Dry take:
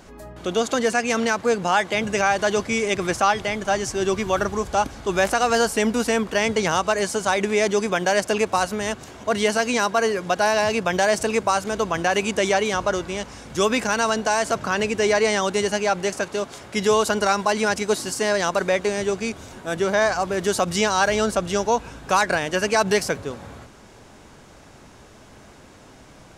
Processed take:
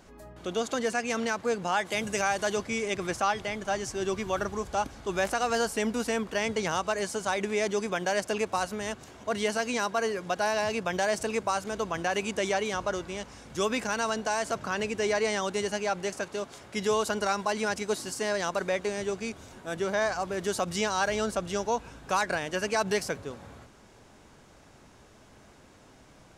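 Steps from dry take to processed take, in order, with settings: 1.85–2.55 s: peaking EQ 11 kHz +13.5 dB -> +7 dB 1.4 oct; trim -8 dB

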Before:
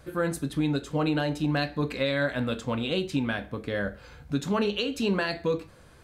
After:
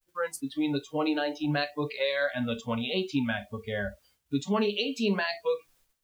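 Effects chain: spectral noise reduction 29 dB; added noise white -69 dBFS; expander -58 dBFS

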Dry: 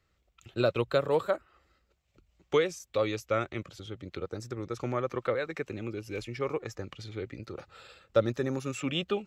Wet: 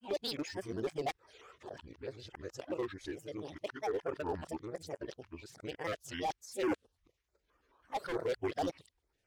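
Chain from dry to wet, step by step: reverse the whole clip; granulator, grains 20 per s, spray 14 ms, pitch spread up and down by 7 st; resonant low shelf 280 Hz -6.5 dB, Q 1.5; hard clipper -26 dBFS, distortion -9 dB; step-sequenced notch 9.2 Hz 450–3900 Hz; trim -2.5 dB

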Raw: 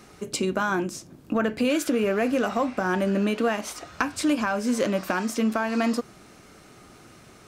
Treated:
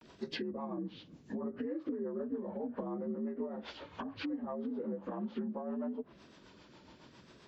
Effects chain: frequency axis rescaled in octaves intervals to 83%; low-pass that closes with the level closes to 720 Hz, closed at -23.5 dBFS; compression, threshold -30 dBFS, peak gain reduction 9 dB; rotary cabinet horn 7.5 Hz; vibrato 0.7 Hz 86 cents; trim -3.5 dB

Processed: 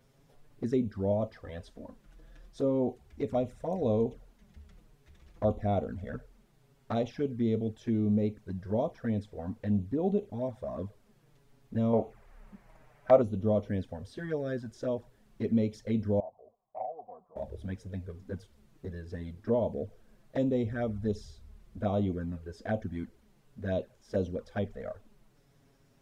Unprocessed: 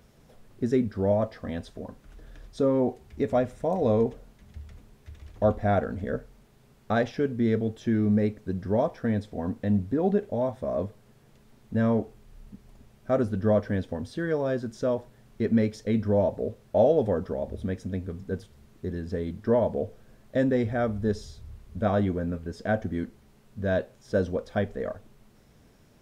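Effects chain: 11.93–13.22 s: high-order bell 1.1 kHz +11.5 dB 2.5 oct; 16.20–17.36 s: cascade formant filter a; touch-sensitive flanger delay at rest 7.9 ms, full sweep at -21.5 dBFS; trim -4 dB

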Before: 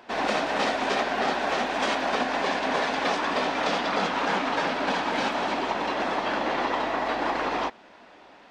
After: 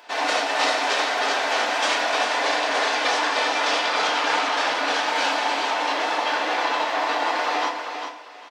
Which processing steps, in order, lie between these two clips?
high-pass 490 Hz 12 dB/octave; treble shelf 2.9 kHz +8.5 dB; on a send: feedback delay 399 ms, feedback 20%, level -7 dB; on the sum: FDN reverb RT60 0.57 s, low-frequency decay 1×, high-frequency decay 0.75×, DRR 1.5 dB

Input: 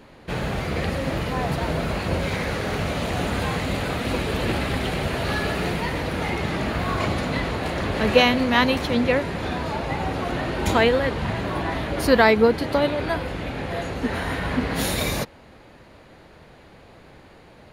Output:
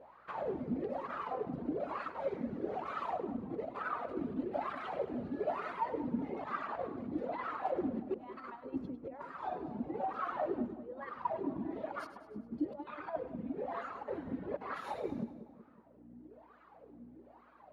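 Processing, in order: reverb removal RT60 1.9 s; 3.17–4.08 s: tilt shelf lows +3.5 dB, about 1.4 kHz; compressor with a negative ratio -28 dBFS, ratio -0.5; hum 60 Hz, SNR 14 dB; wah-wah 1.1 Hz 230–1300 Hz, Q 7.6; on a send: two-band feedback delay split 830 Hz, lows 185 ms, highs 102 ms, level -13 dB; on the sum: trim +2.5 dB

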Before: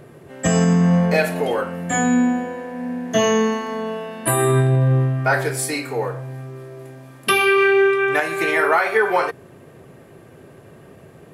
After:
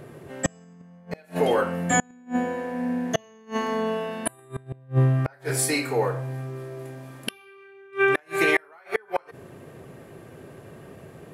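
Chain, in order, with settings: inverted gate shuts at -9 dBFS, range -34 dB

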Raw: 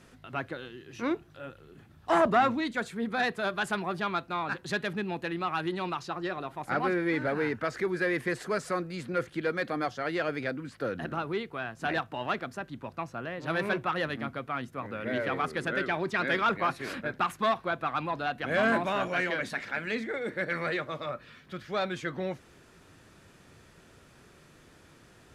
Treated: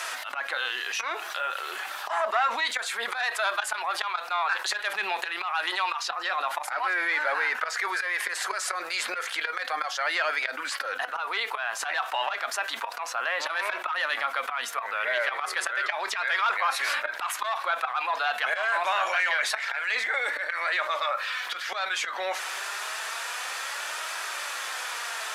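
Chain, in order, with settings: high-pass 780 Hz 24 dB/octave; slow attack 305 ms; flange 0.29 Hz, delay 3 ms, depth 2.4 ms, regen +62%; level flattener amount 70%; trim +5 dB

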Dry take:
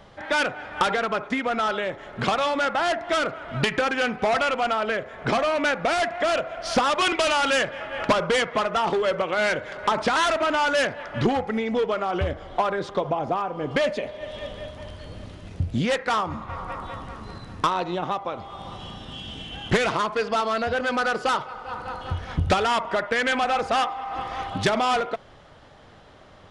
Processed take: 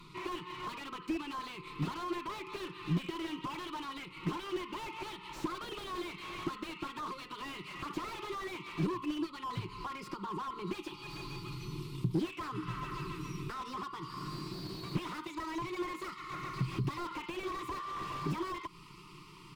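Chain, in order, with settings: gliding tape speed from 120% -> 151%; fifteen-band graphic EQ 630 Hz +5 dB, 2.5 kHz +4 dB, 6.3 kHz -8 dB; compression 6:1, threshold -27 dBFS, peak gain reduction 13 dB; elliptic band-stop 470–1000 Hz, stop band 40 dB; bass shelf 500 Hz -3 dB; static phaser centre 330 Hz, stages 8; comb 5.7 ms, depth 41%; small resonant body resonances 210/1300 Hz, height 7 dB; slew-rate limiter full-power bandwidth 13 Hz; trim +1.5 dB

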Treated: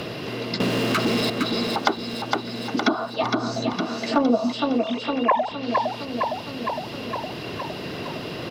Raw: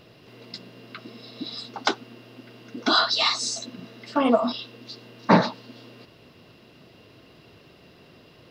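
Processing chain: 4.78–5.51 s: formants replaced by sine waves; low-pass that closes with the level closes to 570 Hz, closed at -17.5 dBFS; 0.60–1.30 s: waveshaping leveller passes 5; 3.23–3.73 s: tilt EQ -3.5 dB/octave; feedback delay 461 ms, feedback 52%, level -6.5 dB; three bands compressed up and down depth 70%; trim +7 dB

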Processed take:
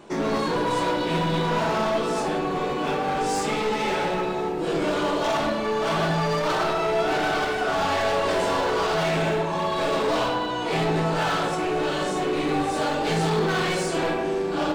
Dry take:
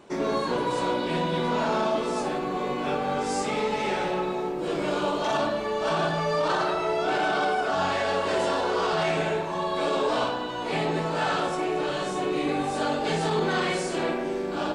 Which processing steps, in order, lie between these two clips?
hard clipper -24.5 dBFS, distortion -12 dB; simulated room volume 220 m³, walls furnished, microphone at 0.67 m; trim +3.5 dB

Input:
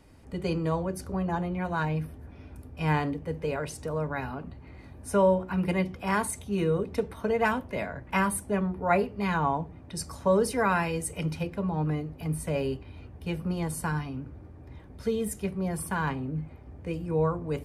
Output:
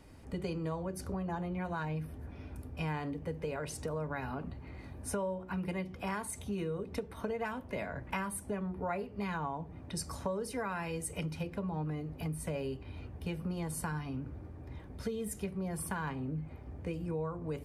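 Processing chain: compression 6:1, threshold -34 dBFS, peak gain reduction 15 dB

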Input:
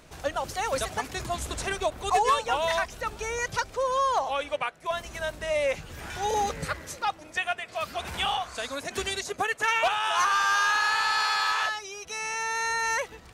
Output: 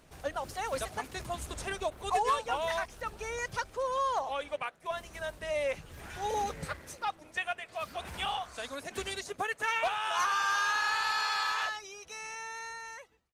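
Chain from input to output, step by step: fade out at the end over 1.70 s; 4.66–5.43 s: hum notches 60/120/180/240/300/360 Hz; trim -5.5 dB; Opus 24 kbps 48 kHz

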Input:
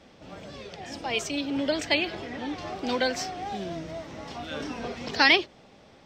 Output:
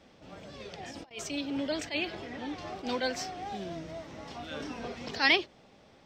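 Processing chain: 0.60–1.11 s: compressor with a negative ratio -39 dBFS, ratio -0.5; attacks held to a fixed rise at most 210 dB/s; trim -4.5 dB

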